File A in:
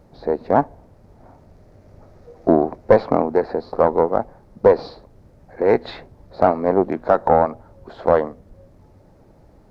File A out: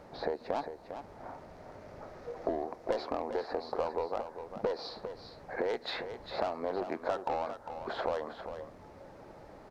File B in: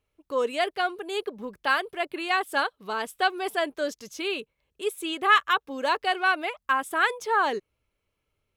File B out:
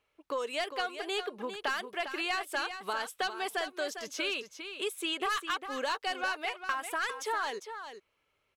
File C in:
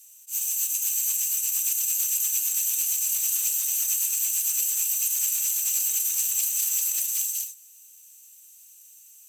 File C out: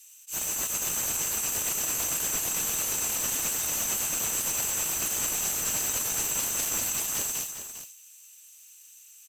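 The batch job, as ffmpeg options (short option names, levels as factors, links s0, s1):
-filter_complex "[0:a]tiltshelf=f=1300:g=-5,asplit=2[s0][s1];[s1]highpass=f=720:p=1,volume=6.31,asoftclip=type=tanh:threshold=0.668[s2];[s0][s2]amix=inputs=2:normalize=0,lowpass=f=1100:p=1,volume=0.501,acrossover=split=4600[s3][s4];[s3]acompressor=threshold=0.0251:ratio=6[s5];[s5][s4]amix=inputs=2:normalize=0,aecho=1:1:402:0.335"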